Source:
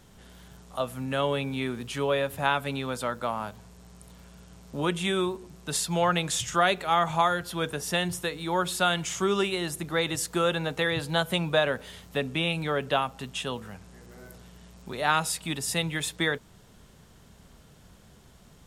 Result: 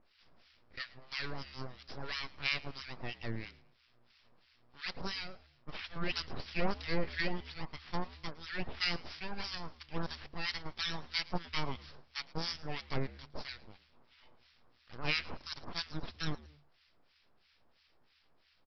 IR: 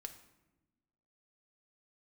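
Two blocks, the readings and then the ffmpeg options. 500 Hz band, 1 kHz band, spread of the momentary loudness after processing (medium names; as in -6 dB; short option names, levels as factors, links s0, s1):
-17.0 dB, -16.5 dB, 12 LU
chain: -filter_complex "[0:a]highpass=870,aresample=11025,aeval=exprs='abs(val(0))':c=same,aresample=44100,aeval=exprs='0.299*(cos(1*acos(clip(val(0)/0.299,-1,1)))-cos(1*PI/2))+0.00237*(cos(4*acos(clip(val(0)/0.299,-1,1)))-cos(4*PI/2))':c=same,acrossover=split=1300[s0][s1];[s0]aeval=exprs='val(0)*(1-1/2+1/2*cos(2*PI*3*n/s))':c=same[s2];[s1]aeval=exprs='val(0)*(1-1/2-1/2*cos(2*PI*3*n/s))':c=same[s3];[s2][s3]amix=inputs=2:normalize=0,asplit=3[s4][s5][s6];[s5]adelay=110,afreqshift=72,volume=0.0794[s7];[s6]adelay=220,afreqshift=144,volume=0.0269[s8];[s4][s7][s8]amix=inputs=3:normalize=0"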